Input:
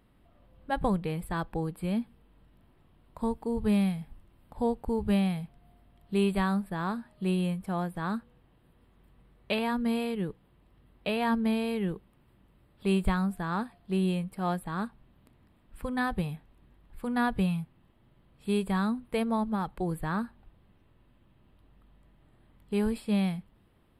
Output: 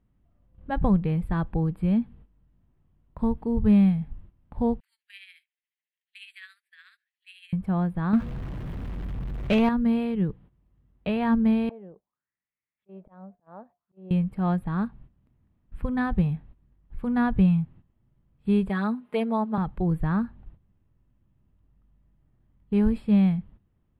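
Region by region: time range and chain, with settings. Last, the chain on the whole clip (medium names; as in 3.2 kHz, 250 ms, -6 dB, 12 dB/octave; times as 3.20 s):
4.80–7.53 s: steep high-pass 1.8 kHz 48 dB/octave + tremolo 14 Hz, depth 54%
8.13–9.69 s: jump at every zero crossing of -43.5 dBFS + waveshaping leveller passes 2
11.69–14.11 s: auto-wah 610–2300 Hz, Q 5.4, down, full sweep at -31.5 dBFS + slow attack 154 ms
18.69–19.58 s: high-pass 390 Hz + comb 4.8 ms, depth 98%
whole clip: gate -55 dBFS, range -13 dB; tone controls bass +11 dB, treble -15 dB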